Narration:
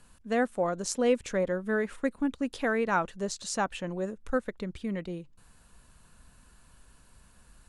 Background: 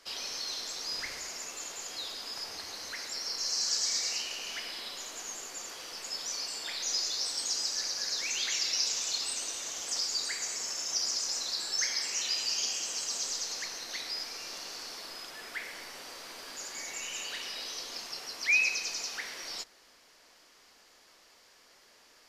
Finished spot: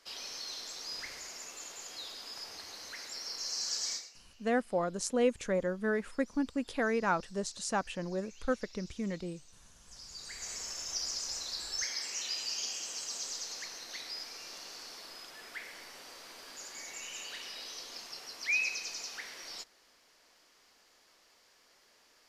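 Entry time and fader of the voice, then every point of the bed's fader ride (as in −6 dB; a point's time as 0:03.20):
4.15 s, −3.0 dB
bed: 0:03.93 −5 dB
0:04.13 −25 dB
0:09.78 −25 dB
0:10.51 −5 dB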